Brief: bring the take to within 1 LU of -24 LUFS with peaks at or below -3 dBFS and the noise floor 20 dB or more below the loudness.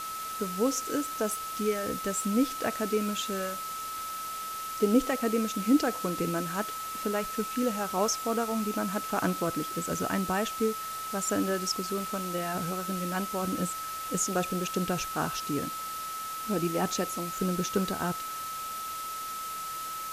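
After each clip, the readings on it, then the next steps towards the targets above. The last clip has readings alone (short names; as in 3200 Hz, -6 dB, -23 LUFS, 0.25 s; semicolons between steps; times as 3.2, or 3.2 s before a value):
steady tone 1300 Hz; tone level -35 dBFS; noise floor -37 dBFS; noise floor target -51 dBFS; loudness -30.5 LUFS; peak -12.0 dBFS; loudness target -24.0 LUFS
-> notch 1300 Hz, Q 30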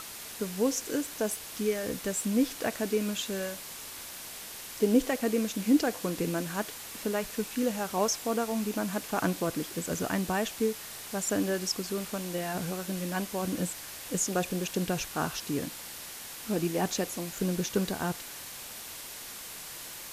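steady tone none; noise floor -43 dBFS; noise floor target -52 dBFS
-> denoiser 9 dB, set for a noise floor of -43 dBFS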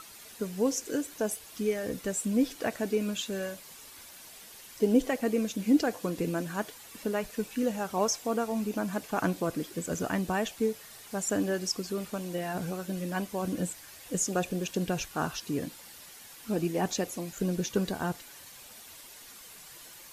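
noise floor -50 dBFS; noise floor target -52 dBFS
-> denoiser 6 dB, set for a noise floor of -50 dBFS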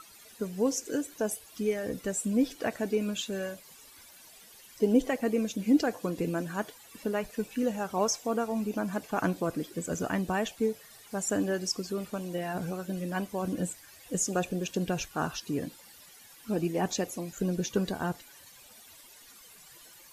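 noise floor -54 dBFS; loudness -31.5 LUFS; peak -13.0 dBFS; loudness target -24.0 LUFS
-> gain +7.5 dB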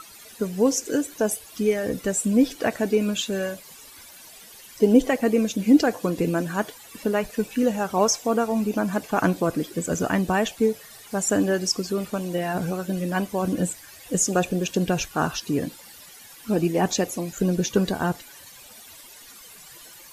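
loudness -24.0 LUFS; peak -5.5 dBFS; noise floor -46 dBFS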